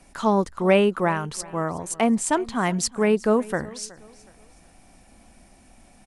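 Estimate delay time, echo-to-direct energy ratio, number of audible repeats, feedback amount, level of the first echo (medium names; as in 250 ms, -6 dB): 369 ms, -20.5 dB, 2, 34%, -21.0 dB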